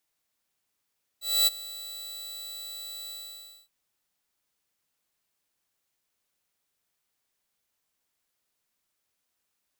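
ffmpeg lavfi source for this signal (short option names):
-f lavfi -i "aevalsrc='0.168*(2*mod(3950*t,1)-1)':d=2.47:s=44100,afade=t=in:d=0.259,afade=t=out:st=0.259:d=0.023:silence=0.106,afade=t=out:st=1.89:d=0.58"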